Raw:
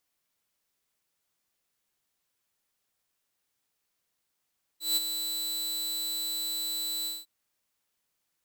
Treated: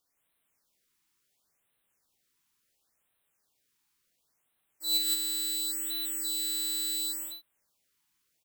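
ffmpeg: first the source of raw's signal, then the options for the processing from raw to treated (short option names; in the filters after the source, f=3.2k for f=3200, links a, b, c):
-f lavfi -i "aevalsrc='0.1*(2*mod(3980*t,1)-1)':d=2.455:s=44100,afade=t=in:d=0.164,afade=t=out:st=0.164:d=0.026:silence=0.398,afade=t=out:st=2.26:d=0.195"
-af "aecho=1:1:49.56|166.2:0.501|1,afftfilt=real='re*(1-between(b*sr/1024,540*pow(6000/540,0.5+0.5*sin(2*PI*0.71*pts/sr))/1.41,540*pow(6000/540,0.5+0.5*sin(2*PI*0.71*pts/sr))*1.41))':imag='im*(1-between(b*sr/1024,540*pow(6000/540,0.5+0.5*sin(2*PI*0.71*pts/sr))/1.41,540*pow(6000/540,0.5+0.5*sin(2*PI*0.71*pts/sr))*1.41))':win_size=1024:overlap=0.75"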